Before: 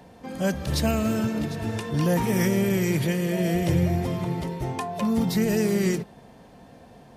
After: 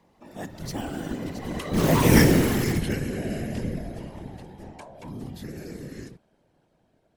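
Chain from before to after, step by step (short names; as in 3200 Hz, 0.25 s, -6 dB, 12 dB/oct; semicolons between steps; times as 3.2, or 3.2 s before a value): Doppler pass-by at 2.14, 37 m/s, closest 6.3 m; in parallel at -8 dB: wrapped overs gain 27 dB; on the sum: whisperiser; gain +7 dB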